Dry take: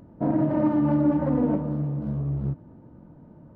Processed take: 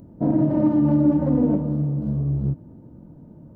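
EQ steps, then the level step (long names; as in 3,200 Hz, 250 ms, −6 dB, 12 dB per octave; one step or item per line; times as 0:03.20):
low-shelf EQ 200 Hz −3.5 dB
parametric band 1,600 Hz −13 dB 2.9 octaves
+7.5 dB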